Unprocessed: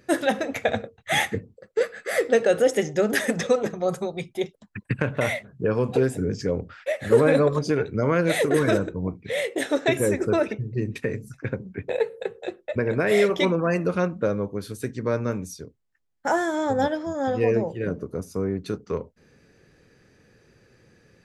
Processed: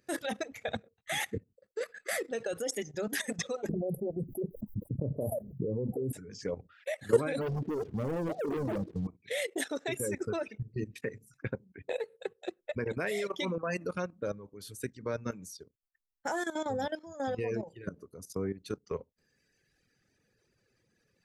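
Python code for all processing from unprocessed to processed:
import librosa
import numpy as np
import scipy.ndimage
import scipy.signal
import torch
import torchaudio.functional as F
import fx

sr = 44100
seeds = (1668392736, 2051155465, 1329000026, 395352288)

y = fx.chain(x, sr, fx.cheby2_bandstop(low_hz=1500.0, high_hz=5900.0, order=4, stop_db=60),
    fx.low_shelf(hz=130.0, db=3.0),
    fx.env_flatten(amount_pct=70), at=(3.69, 6.13))
y = fx.chain(y, sr, fx.gaussian_blur(sigma=14.0),
    fx.low_shelf(hz=98.0, db=-7.5),
    fx.leveller(passes=3), at=(7.41, 9.07))
y = fx.dereverb_blind(y, sr, rt60_s=1.7)
y = fx.high_shelf(y, sr, hz=3400.0, db=7.5)
y = fx.level_steps(y, sr, step_db=14)
y = y * librosa.db_to_amplitude(-4.5)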